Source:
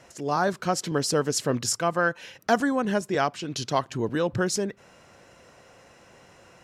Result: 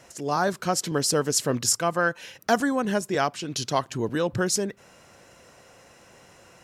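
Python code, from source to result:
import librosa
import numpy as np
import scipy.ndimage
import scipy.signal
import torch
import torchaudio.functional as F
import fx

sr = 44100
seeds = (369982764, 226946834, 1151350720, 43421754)

y = fx.high_shelf(x, sr, hz=7300.0, db=9.0)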